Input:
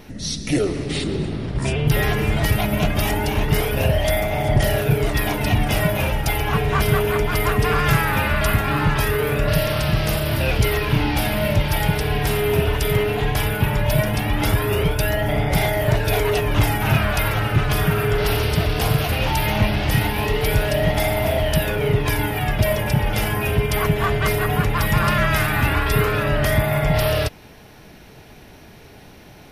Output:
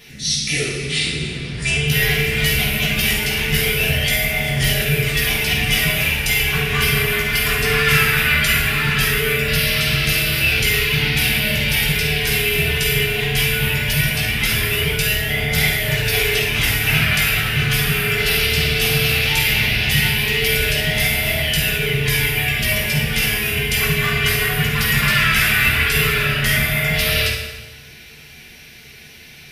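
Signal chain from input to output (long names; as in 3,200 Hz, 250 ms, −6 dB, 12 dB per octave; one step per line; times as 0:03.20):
high shelf with overshoot 1,500 Hz +13 dB, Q 1.5
convolution reverb RT60 1.2 s, pre-delay 3 ms, DRR −6 dB
level −11.5 dB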